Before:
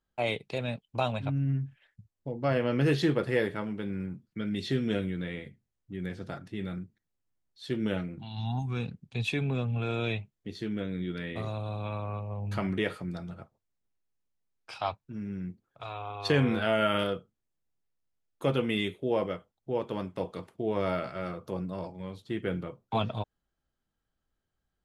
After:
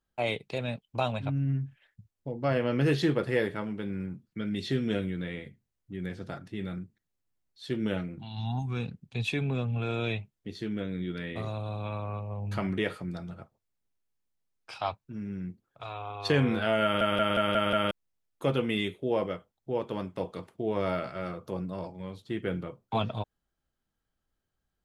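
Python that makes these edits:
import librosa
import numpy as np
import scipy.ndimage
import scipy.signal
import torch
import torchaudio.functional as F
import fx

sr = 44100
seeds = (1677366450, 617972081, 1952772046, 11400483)

y = fx.edit(x, sr, fx.stutter_over(start_s=16.83, slice_s=0.18, count=6), tone=tone)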